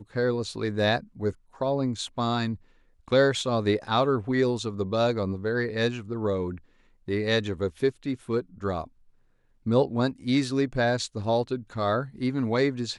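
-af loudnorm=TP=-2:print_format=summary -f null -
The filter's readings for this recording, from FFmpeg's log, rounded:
Input Integrated:    -27.0 LUFS
Input True Peak:     -10.4 dBTP
Input LRA:             2.7 LU
Input Threshold:     -37.2 LUFS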